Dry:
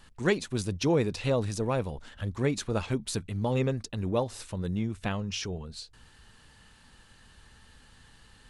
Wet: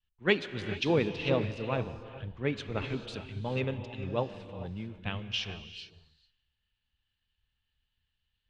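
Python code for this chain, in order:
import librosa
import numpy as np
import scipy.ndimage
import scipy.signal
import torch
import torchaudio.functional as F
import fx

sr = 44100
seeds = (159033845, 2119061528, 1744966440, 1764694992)

p1 = fx.lowpass_res(x, sr, hz=3000.0, q=2.4)
p2 = p1 + fx.echo_single(p1, sr, ms=182, db=-21.0, dry=0)
p3 = fx.rev_gated(p2, sr, seeds[0], gate_ms=470, shape='rising', drr_db=4.5)
p4 = fx.band_widen(p3, sr, depth_pct=100)
y = p4 * 10.0 ** (-6.5 / 20.0)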